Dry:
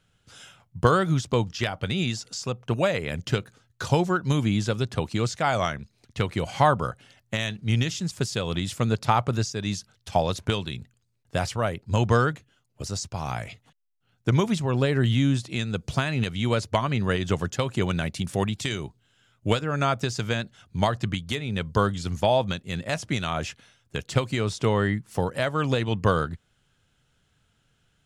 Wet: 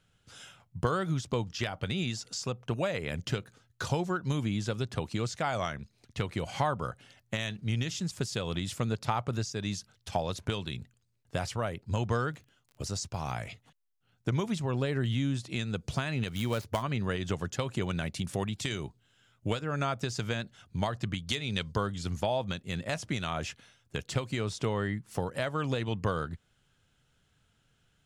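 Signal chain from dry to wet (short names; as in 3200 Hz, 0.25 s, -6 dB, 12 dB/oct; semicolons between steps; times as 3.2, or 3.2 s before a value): 16.28–16.83 switching dead time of 0.07 ms; 21.27–21.71 bell 5000 Hz +7.5 dB -> +15 dB 1.9 oct; compressor 2:1, threshold -28 dBFS, peak gain reduction 8 dB; 12.22–13.48 crackle 28/s -44 dBFS; gain -2.5 dB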